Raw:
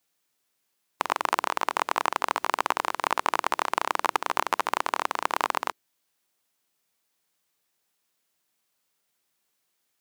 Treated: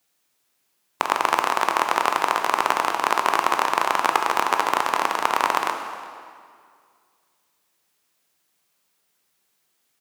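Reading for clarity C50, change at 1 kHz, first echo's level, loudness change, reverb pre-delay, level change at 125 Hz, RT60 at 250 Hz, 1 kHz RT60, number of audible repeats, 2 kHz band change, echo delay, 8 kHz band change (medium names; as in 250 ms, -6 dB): 6.0 dB, +6.0 dB, -20.5 dB, +6.0 dB, 16 ms, no reading, 2.2 s, 2.1 s, 1, +6.0 dB, 363 ms, +5.5 dB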